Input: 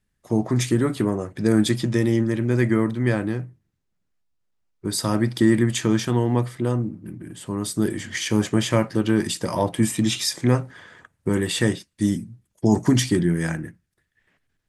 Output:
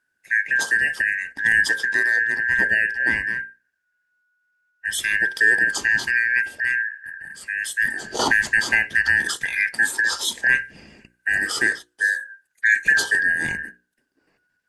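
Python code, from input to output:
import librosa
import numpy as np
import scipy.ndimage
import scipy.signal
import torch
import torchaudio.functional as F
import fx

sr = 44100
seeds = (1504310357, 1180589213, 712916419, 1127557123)

y = fx.band_shuffle(x, sr, order='2143')
y = fx.hum_notches(y, sr, base_hz=60, count=9)
y = fx.band_squash(y, sr, depth_pct=100, at=(8.19, 9.36))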